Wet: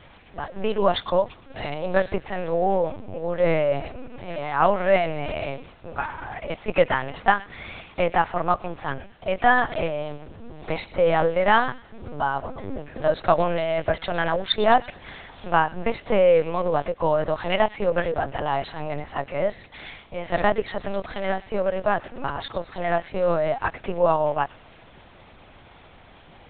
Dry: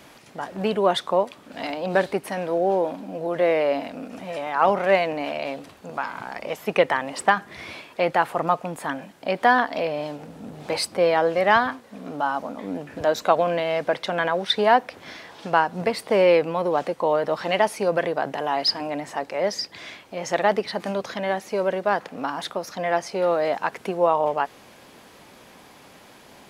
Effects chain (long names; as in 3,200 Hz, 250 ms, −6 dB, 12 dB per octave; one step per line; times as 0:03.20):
on a send: delay with a high-pass on its return 113 ms, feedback 38%, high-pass 2,300 Hz, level −14 dB
on the sum: linear-prediction vocoder at 8 kHz pitch kept